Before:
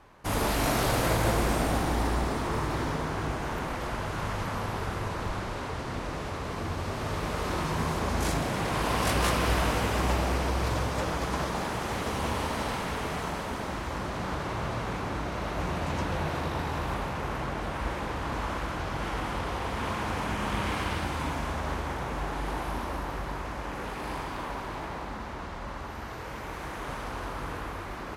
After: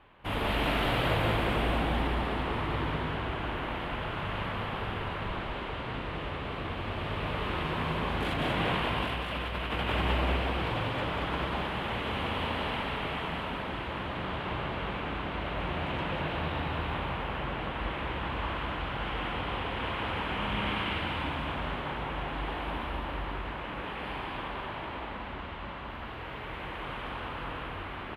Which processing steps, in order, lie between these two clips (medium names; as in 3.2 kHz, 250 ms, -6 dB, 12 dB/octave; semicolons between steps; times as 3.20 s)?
resonant high shelf 4.3 kHz -12 dB, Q 3; 8.31–9.92 s: compressor with a negative ratio -28 dBFS, ratio -0.5; delay 192 ms -3.5 dB; trim -4 dB